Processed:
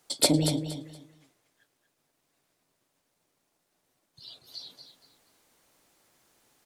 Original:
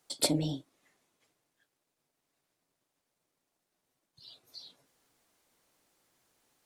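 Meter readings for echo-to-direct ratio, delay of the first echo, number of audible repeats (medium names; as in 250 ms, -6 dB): -8.5 dB, 235 ms, 3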